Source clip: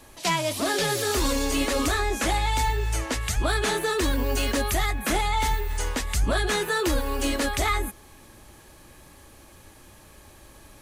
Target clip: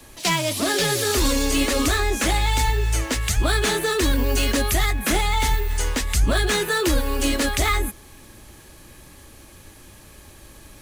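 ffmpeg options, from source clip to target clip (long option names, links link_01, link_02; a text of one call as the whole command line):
ffmpeg -i in.wav -filter_complex "[0:a]equalizer=frequency=840:width_type=o:width=1.7:gain=-4.5,acrossover=split=140|1600|4500[link_01][link_02][link_03][link_04];[link_03]acrusher=bits=2:mode=log:mix=0:aa=0.000001[link_05];[link_01][link_02][link_05][link_04]amix=inputs=4:normalize=0,volume=5dB" out.wav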